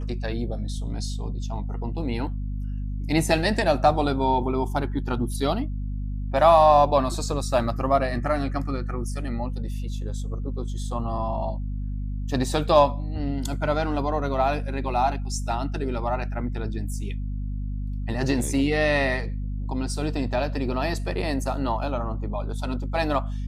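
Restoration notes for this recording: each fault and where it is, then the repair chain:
mains hum 50 Hz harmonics 5 −29 dBFS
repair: hum removal 50 Hz, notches 5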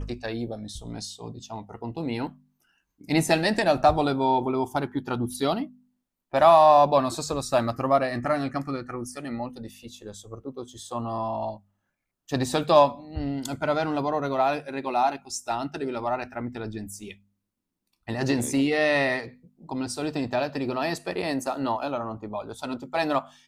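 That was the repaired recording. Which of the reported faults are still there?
none of them is left

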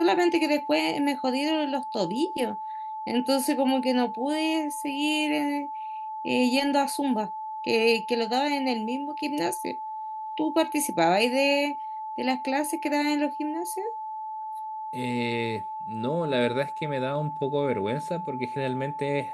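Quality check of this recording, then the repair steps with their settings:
whistle 870 Hz −32 dBFS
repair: notch filter 870 Hz, Q 30

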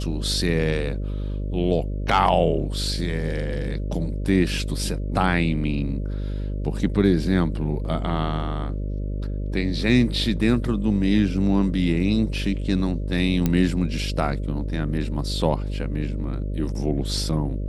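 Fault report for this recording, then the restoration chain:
mains buzz 50 Hz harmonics 12 −27 dBFS
0:13.46: click −8 dBFS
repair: click removal
hum removal 50 Hz, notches 12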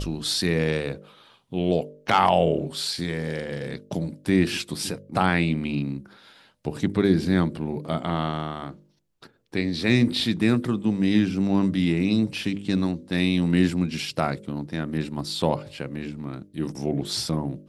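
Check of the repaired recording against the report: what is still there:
none of them is left

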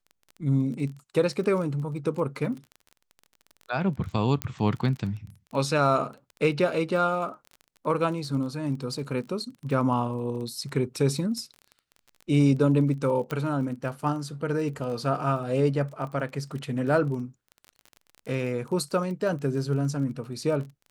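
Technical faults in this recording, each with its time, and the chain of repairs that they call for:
surface crackle 24 per second −35 dBFS
0:04.42: click −12 dBFS
0:13.31: click −17 dBFS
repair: click removal

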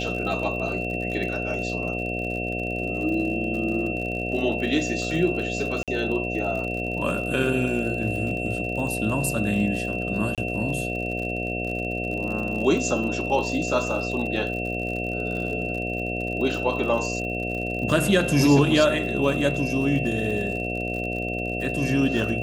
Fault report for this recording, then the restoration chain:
mains buzz 60 Hz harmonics 12 −30 dBFS
surface crackle 59 per second −32 dBFS
whistle 2,700 Hz −30 dBFS
0:05.83–0:05.88: drop-out 47 ms
0:10.35–0:10.38: drop-out 27 ms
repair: click removal
hum removal 60 Hz, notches 12
notch filter 2,700 Hz, Q 30
repair the gap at 0:05.83, 47 ms
repair the gap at 0:10.35, 27 ms

